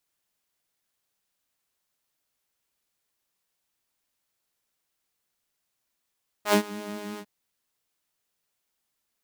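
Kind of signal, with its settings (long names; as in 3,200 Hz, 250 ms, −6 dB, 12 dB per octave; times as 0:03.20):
subtractive patch with filter wobble G#3, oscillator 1 saw, interval +7 semitones, oscillator 2 level −9.5 dB, sub −25 dB, noise −19.5 dB, filter highpass, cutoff 130 Hz, Q 1.1, attack 81 ms, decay 0.09 s, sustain −20.5 dB, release 0.06 s, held 0.74 s, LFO 5.8 Hz, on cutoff 0.8 octaves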